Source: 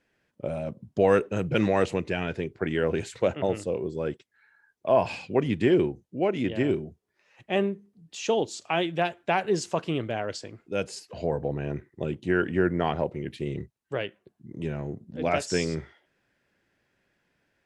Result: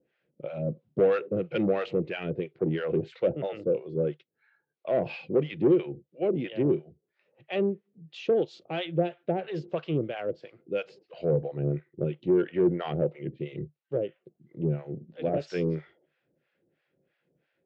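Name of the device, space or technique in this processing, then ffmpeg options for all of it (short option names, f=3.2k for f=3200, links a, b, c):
guitar amplifier with harmonic tremolo: -filter_complex "[0:a]acrossover=split=710[a][b];[a]aeval=exprs='val(0)*(1-1/2+1/2*cos(2*PI*3*n/s))':c=same[c];[b]aeval=exprs='val(0)*(1-1/2-1/2*cos(2*PI*3*n/s))':c=same[d];[c][d]amix=inputs=2:normalize=0,asoftclip=type=tanh:threshold=-22dB,highpass=90,equalizer=f=93:t=q:w=4:g=-6,equalizer=f=150:t=q:w=4:g=10,equalizer=f=350:t=q:w=4:g=7,equalizer=f=510:t=q:w=4:g=9,equalizer=f=980:t=q:w=4:g=-7,equalizer=f=1.7k:t=q:w=4:g=-4,lowpass=f=3.8k:w=0.5412,lowpass=f=3.8k:w=1.3066"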